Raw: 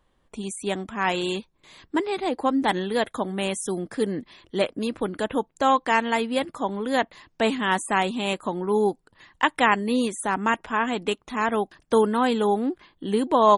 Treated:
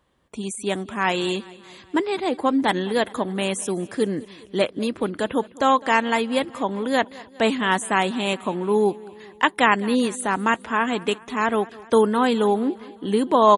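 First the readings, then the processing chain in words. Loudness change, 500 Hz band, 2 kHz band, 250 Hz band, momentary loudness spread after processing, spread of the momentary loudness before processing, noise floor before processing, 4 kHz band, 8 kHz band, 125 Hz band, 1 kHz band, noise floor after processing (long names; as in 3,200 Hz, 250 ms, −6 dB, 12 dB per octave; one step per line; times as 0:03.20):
+2.5 dB, +2.5 dB, +2.5 dB, +2.5 dB, 8 LU, 8 LU, −68 dBFS, +2.5 dB, +2.5 dB, +2.5 dB, +1.5 dB, −48 dBFS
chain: high-pass filter 60 Hz
parametric band 800 Hz −2 dB 0.3 octaves
repeating echo 206 ms, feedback 58%, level −21 dB
level +2.5 dB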